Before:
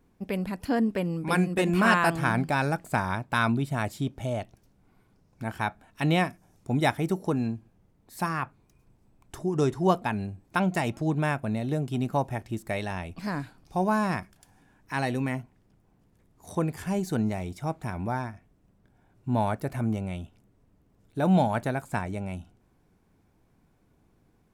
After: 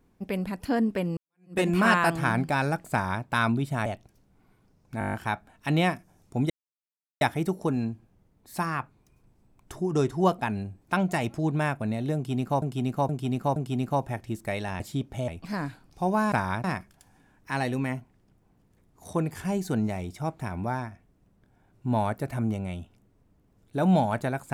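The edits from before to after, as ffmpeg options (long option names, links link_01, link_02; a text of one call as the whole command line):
ffmpeg -i in.wav -filter_complex "[0:a]asplit=18[link_01][link_02][link_03][link_04][link_05][link_06][link_07][link_08][link_09][link_10][link_11][link_12][link_13][link_14][link_15][link_16][link_17][link_18];[link_01]atrim=end=1.17,asetpts=PTS-STARTPTS,afade=type=out:start_time=1.166:duration=0.004:curve=hsin[link_19];[link_02]atrim=start=1.17:end=3.862,asetpts=PTS-STARTPTS,afade=type=in:duration=0.4:curve=exp[link_20];[link_03]atrim=start=4.338:end=5.492[link_21];[link_04]atrim=start=5.468:end=5.492[link_22];[link_05]atrim=start=5.468:end=5.492[link_23];[link_06]atrim=start=5.468:end=5.492[link_24];[link_07]atrim=start=5.468:end=5.492[link_25];[link_08]atrim=start=5.468:end=5.492[link_26];[link_09]atrim=start=5.468:end=5.492[link_27];[link_10]atrim=start=5.468:end=6.84,asetpts=PTS-STARTPTS,afade=type=out:start_time=1.368:duration=0.004:curve=hsin,apad=pad_dur=0.71[link_28];[link_11]atrim=start=6.84:end=12.252,asetpts=PTS-STARTPTS,afade=type=in:duration=0.004:curve=hsin[link_29];[link_12]atrim=start=11.778:end=12.252[link_30];[link_13]atrim=start=11.778:end=12.252[link_31];[link_14]atrim=start=11.778:end=13.022[link_32];[link_15]atrim=start=3.858:end=4.342[link_33];[link_16]atrim=start=13.018:end=14.062[link_34];[link_17]atrim=start=2.918:end=3.242[link_35];[link_18]atrim=start=14.058[link_36];[link_19][link_20]concat=n=2:v=0:a=1[link_37];[link_37][link_21]acrossfade=duration=0.004:curve1=hsin:curve2=hsin[link_38];[link_38][link_22]acrossfade=duration=0.004:curve1=hsin:curve2=hsin[link_39];[link_39][link_23]acrossfade=duration=0.004:curve1=hsin:curve2=hsin[link_40];[link_40][link_24]acrossfade=duration=0.004:curve1=hsin:curve2=hsin[link_41];[link_41][link_25]acrossfade=duration=0.004:curve1=hsin:curve2=hsin[link_42];[link_42][link_26]acrossfade=duration=0.004:curve1=hsin:curve2=hsin[link_43];[link_43][link_27]acrossfade=duration=0.004:curve1=hsin:curve2=hsin[link_44];[link_28][link_29]concat=n=2:v=0:a=1[link_45];[link_44][link_45]acrossfade=duration=0.004:curve1=hsin:curve2=hsin[link_46];[link_46][link_30]acrossfade=duration=0.004:curve1=hsin:curve2=hsin[link_47];[link_47][link_31]acrossfade=duration=0.004:curve1=hsin:curve2=hsin[link_48];[link_48][link_32]acrossfade=duration=0.004:curve1=hsin:curve2=hsin[link_49];[link_49][link_33]acrossfade=duration=0.004:curve1=hsin:curve2=hsin[link_50];[link_50][link_34]acrossfade=duration=0.004:curve1=hsin:curve2=hsin[link_51];[link_51][link_35]acrossfade=duration=0.004:curve1=hsin:curve2=hsin[link_52];[link_52][link_36]acrossfade=duration=0.004:curve1=hsin:curve2=hsin" out.wav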